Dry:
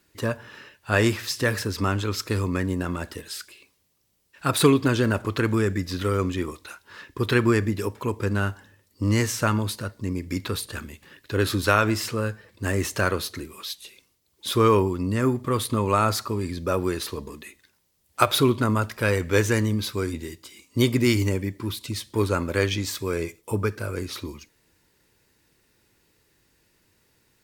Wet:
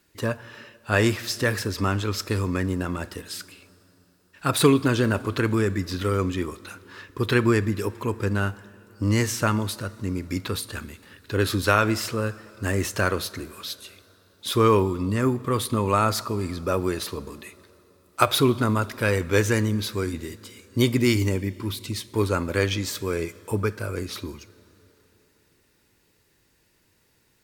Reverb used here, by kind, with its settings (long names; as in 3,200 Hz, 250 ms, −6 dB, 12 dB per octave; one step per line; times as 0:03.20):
dense smooth reverb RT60 3.8 s, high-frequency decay 0.8×, pre-delay 0 ms, DRR 19.5 dB